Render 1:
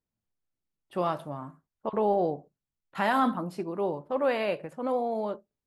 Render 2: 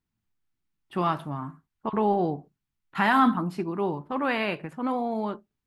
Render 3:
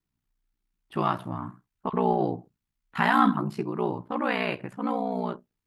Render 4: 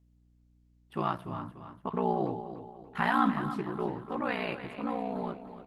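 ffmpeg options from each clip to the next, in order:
ffmpeg -i in.wav -filter_complex "[0:a]equalizer=frequency=550:width=2.1:gain=-14,acrossover=split=3600[link_01][link_02];[link_01]acontrast=79[link_03];[link_03][link_02]amix=inputs=2:normalize=0" out.wav
ffmpeg -i in.wav -af "aeval=exprs='val(0)*sin(2*PI*30*n/s)':channel_layout=same,volume=2.5dB" out.wav
ffmpeg -i in.wav -af "aecho=1:1:292|584|876|1168:0.282|0.118|0.0497|0.0209,aeval=exprs='val(0)+0.00126*(sin(2*PI*60*n/s)+sin(2*PI*2*60*n/s)/2+sin(2*PI*3*60*n/s)/3+sin(2*PI*4*60*n/s)/4+sin(2*PI*5*60*n/s)/5)':channel_layout=same,volume=-5dB" -ar 48000 -c:a libopus -b:a 20k out.opus

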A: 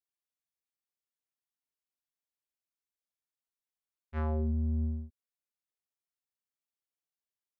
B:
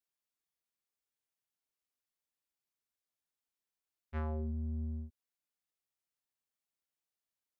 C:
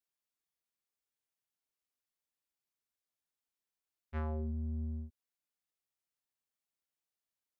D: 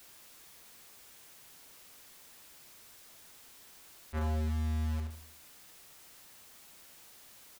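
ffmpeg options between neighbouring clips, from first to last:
ffmpeg -i in.wav -af "acompressor=threshold=-35dB:ratio=6" out.wav
ffmpeg -i in.wav -af anull out.wav
ffmpeg -i in.wav -filter_complex "[0:a]aeval=exprs='val(0)+0.5*0.00355*sgn(val(0))':channel_layout=same,asplit=2[link_01][link_02];[link_02]adelay=76,lowpass=frequency=2000:poles=1,volume=-12dB,asplit=2[link_03][link_04];[link_04]adelay=76,lowpass=frequency=2000:poles=1,volume=0.47,asplit=2[link_05][link_06];[link_06]adelay=76,lowpass=frequency=2000:poles=1,volume=0.47,asplit=2[link_07][link_08];[link_08]adelay=76,lowpass=frequency=2000:poles=1,volume=0.47,asplit=2[link_09][link_10];[link_10]adelay=76,lowpass=frequency=2000:poles=1,volume=0.47[link_11];[link_01][link_03][link_05][link_07][link_09][link_11]amix=inputs=6:normalize=0,acrossover=split=270|510[link_12][link_13][link_14];[link_12]acrusher=bits=3:mode=log:mix=0:aa=0.000001[link_15];[link_15][link_13][link_14]amix=inputs=3:normalize=0,volume=2dB" out.wav

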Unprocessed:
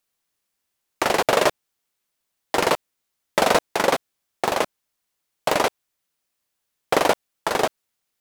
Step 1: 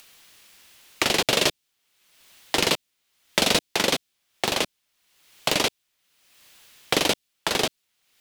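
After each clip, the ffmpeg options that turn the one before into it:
ffmpeg -i in.wav -filter_complex "[0:a]acrossover=split=360|3000[link_01][link_02][link_03];[link_02]acompressor=threshold=-30dB:ratio=6[link_04];[link_01][link_04][link_03]amix=inputs=3:normalize=0,equalizer=frequency=3000:width_type=o:width=1.7:gain=8,acompressor=mode=upward:threshold=-37dB:ratio=2.5,volume=1.5dB" out.wav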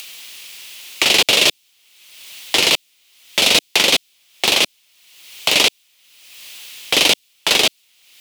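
ffmpeg -i in.wav -af "aexciter=amount=3.8:drive=7.3:freq=2300,bass=frequency=250:gain=-5,treble=frequency=4000:gain=-12,alimiter=level_in=10.5dB:limit=-1dB:release=50:level=0:latency=1,volume=-1dB" out.wav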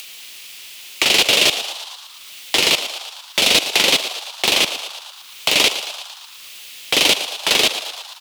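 ffmpeg -i in.wav -filter_complex "[0:a]asplit=9[link_01][link_02][link_03][link_04][link_05][link_06][link_07][link_08][link_09];[link_02]adelay=114,afreqshift=100,volume=-11dB[link_10];[link_03]adelay=228,afreqshift=200,volume=-14.9dB[link_11];[link_04]adelay=342,afreqshift=300,volume=-18.8dB[link_12];[link_05]adelay=456,afreqshift=400,volume=-22.6dB[link_13];[link_06]adelay=570,afreqshift=500,volume=-26.5dB[link_14];[link_07]adelay=684,afreqshift=600,volume=-30.4dB[link_15];[link_08]adelay=798,afreqshift=700,volume=-34.3dB[link_16];[link_09]adelay=912,afreqshift=800,volume=-38.1dB[link_17];[link_01][link_10][link_11][link_12][link_13][link_14][link_15][link_16][link_17]amix=inputs=9:normalize=0,volume=-1dB" out.wav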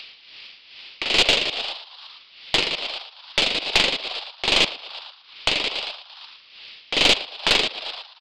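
ffmpeg -i in.wav -af "tremolo=f=2.4:d=0.68,aresample=11025,aresample=44100,aeval=exprs='(tanh(2*val(0)+0.65)-tanh(0.65))/2':channel_layout=same,volume=2.5dB" out.wav

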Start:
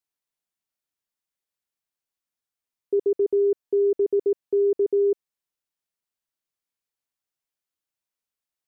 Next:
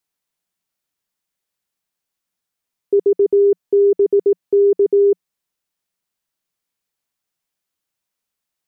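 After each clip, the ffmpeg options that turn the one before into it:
ffmpeg -i in.wav -af "equalizer=frequency=180:width_type=o:width=0.29:gain=5.5,volume=7.5dB" out.wav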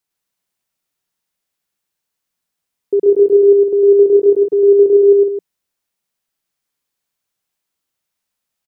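ffmpeg -i in.wav -af "aecho=1:1:105|154.5|259.5:0.794|0.447|0.398" out.wav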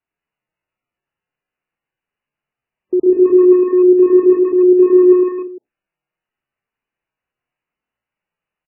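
ffmpeg -i in.wav -filter_complex "[0:a]afreqshift=-39,asplit=2[link_01][link_02];[link_02]adelay=190,highpass=300,lowpass=3400,asoftclip=type=hard:threshold=-11dB,volume=-8dB[link_03];[link_01][link_03]amix=inputs=2:normalize=0" -ar 8000 -c:a libmp3lame -b:a 8k out.mp3

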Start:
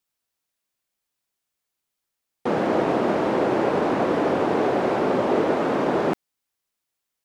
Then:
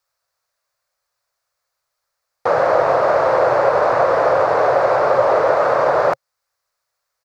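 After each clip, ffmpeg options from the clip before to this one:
ffmpeg -i in.wav -filter_complex "[0:a]firequalizer=gain_entry='entry(130,0);entry(210,-20);entry(370,-9);entry(540,9);entry(810,4);entry(1200,9);entry(3100,-7);entry(4400,4);entry(9000,-4)':delay=0.05:min_phase=1,asplit=2[link_01][link_02];[link_02]alimiter=limit=-15dB:level=0:latency=1:release=351,volume=-1.5dB[link_03];[link_01][link_03]amix=inputs=2:normalize=0" out.wav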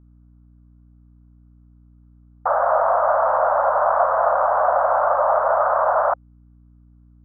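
ffmpeg -i in.wav -af "asuperpass=centerf=950:order=8:qfactor=1.1,aeval=exprs='val(0)+0.00355*(sin(2*PI*60*n/s)+sin(2*PI*2*60*n/s)/2+sin(2*PI*3*60*n/s)/3+sin(2*PI*4*60*n/s)/4+sin(2*PI*5*60*n/s)/5)':channel_layout=same" out.wav

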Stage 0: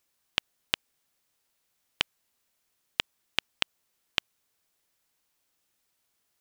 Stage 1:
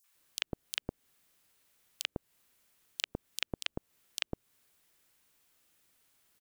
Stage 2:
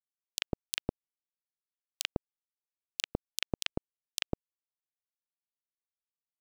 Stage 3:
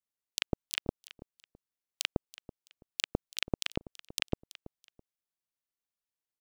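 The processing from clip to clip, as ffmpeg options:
ffmpeg -i in.wav -filter_complex "[0:a]acrossover=split=760|5200[link_01][link_02][link_03];[link_02]adelay=40[link_04];[link_01]adelay=150[link_05];[link_05][link_04][link_03]amix=inputs=3:normalize=0,acrossover=split=480[link_06][link_07];[link_07]acompressor=threshold=-39dB:ratio=5[link_08];[link_06][link_08]amix=inputs=2:normalize=0,volume=6dB" out.wav
ffmpeg -i in.wav -af "aeval=exprs='sgn(val(0))*max(abs(val(0))-0.00251,0)':channel_layout=same,alimiter=level_in=14.5dB:limit=-1dB:release=50:level=0:latency=1,volume=-9dB" out.wav
ffmpeg -i in.wav -filter_complex "[0:a]aecho=1:1:330|660:0.133|0.036,asplit=2[link_01][link_02];[link_02]adynamicsmooth=sensitivity=4:basefreq=650,volume=-11dB[link_03];[link_01][link_03]amix=inputs=2:normalize=0" out.wav

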